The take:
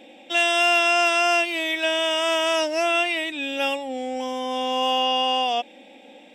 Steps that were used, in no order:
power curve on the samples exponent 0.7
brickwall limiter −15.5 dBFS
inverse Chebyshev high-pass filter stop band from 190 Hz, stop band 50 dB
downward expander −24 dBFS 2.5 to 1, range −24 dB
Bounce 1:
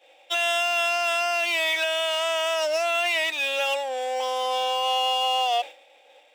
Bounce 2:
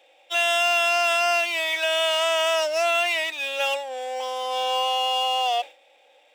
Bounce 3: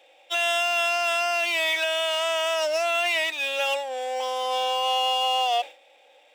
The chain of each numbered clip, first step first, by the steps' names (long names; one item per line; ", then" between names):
power curve on the samples, then downward expander, then inverse Chebyshev high-pass filter, then brickwall limiter
brickwall limiter, then downward expander, then power curve on the samples, then inverse Chebyshev high-pass filter
downward expander, then power curve on the samples, then inverse Chebyshev high-pass filter, then brickwall limiter